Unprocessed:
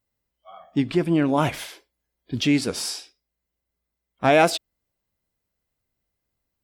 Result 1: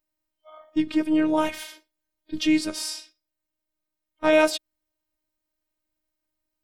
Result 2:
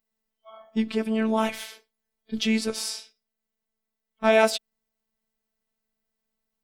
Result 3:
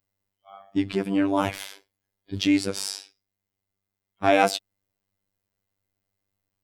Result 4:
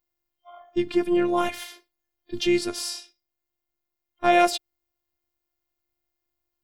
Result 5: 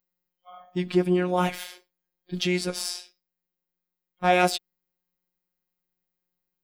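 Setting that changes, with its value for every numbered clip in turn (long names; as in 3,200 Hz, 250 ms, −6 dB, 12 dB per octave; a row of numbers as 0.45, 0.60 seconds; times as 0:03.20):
phases set to zero, frequency: 310, 220, 98, 350, 180 Hertz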